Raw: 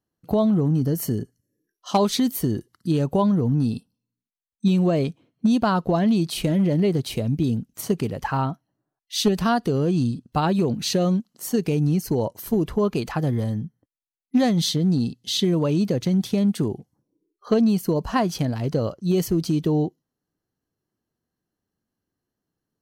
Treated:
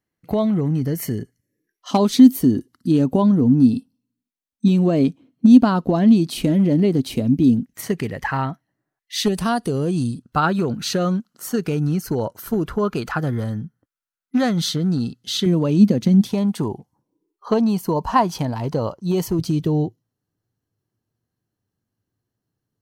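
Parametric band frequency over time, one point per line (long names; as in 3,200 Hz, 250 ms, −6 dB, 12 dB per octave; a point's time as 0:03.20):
parametric band +13 dB 0.49 octaves
2,100 Hz
from 0:01.91 260 Hz
from 0:07.66 1,900 Hz
from 0:09.26 9,400 Hz
from 0:10.22 1,400 Hz
from 0:15.46 220 Hz
from 0:16.29 930 Hz
from 0:19.39 110 Hz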